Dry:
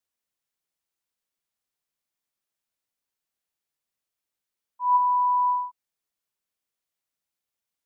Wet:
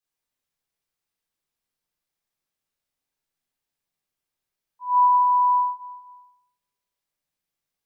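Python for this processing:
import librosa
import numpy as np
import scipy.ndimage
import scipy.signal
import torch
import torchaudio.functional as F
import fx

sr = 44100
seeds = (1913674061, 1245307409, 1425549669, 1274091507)

y = fx.room_shoebox(x, sr, seeds[0], volume_m3=740.0, walls='mixed', distance_m=3.8)
y = y * librosa.db_to_amplitude(-6.0)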